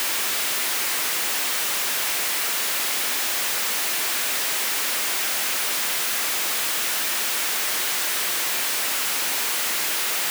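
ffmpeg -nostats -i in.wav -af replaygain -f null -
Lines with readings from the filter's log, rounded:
track_gain = +8.9 dB
track_peak = 0.093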